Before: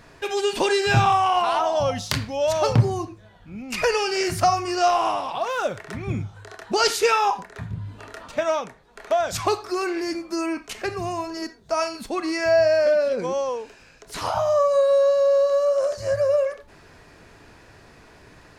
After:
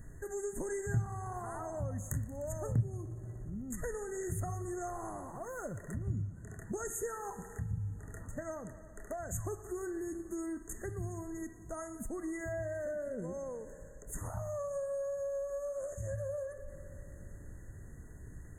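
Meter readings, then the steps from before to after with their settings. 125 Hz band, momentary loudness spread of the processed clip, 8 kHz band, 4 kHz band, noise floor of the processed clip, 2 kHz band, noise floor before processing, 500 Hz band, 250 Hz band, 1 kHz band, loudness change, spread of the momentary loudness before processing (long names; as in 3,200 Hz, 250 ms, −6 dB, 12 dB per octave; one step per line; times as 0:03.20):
−9.0 dB, 13 LU, −10.5 dB, below −40 dB, −51 dBFS, −20.5 dB, −51 dBFS, −18.0 dB, −11.5 dB, −23.5 dB, −17.5 dB, 15 LU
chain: guitar amp tone stack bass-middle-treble 10-0-1
on a send: echo machine with several playback heads 60 ms, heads second and third, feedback 67%, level −20 dB
on the sum: downward compressor 2 to 1, threshold −55 dBFS, peak gain reduction 17 dB
brick-wall band-stop 2,000–6,300 Hz
high-shelf EQ 3,900 Hz +5.5 dB
level +14.5 dB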